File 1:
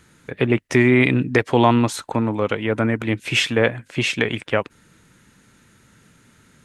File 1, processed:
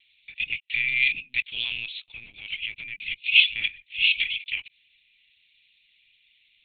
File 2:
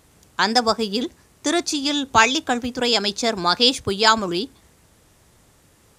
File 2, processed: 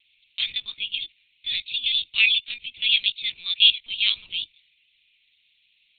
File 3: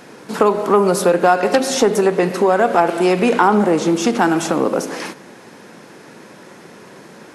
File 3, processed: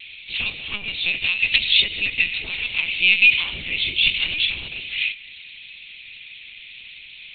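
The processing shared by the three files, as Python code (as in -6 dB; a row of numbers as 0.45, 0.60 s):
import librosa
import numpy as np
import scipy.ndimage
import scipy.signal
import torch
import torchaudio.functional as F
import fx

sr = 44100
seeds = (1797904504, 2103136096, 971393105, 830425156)

y = scipy.signal.sosfilt(scipy.signal.ellip(4, 1.0, 40, 2400.0, 'highpass', fs=sr, output='sos'), x)
y = fx.lpc_vocoder(y, sr, seeds[0], excitation='pitch_kept', order=10)
y = fx.vibrato(y, sr, rate_hz=0.74, depth_cents=14.0)
y = y * 10.0 ** (-3 / 20.0) / np.max(np.abs(y))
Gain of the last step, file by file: +4.5, +5.5, +15.0 dB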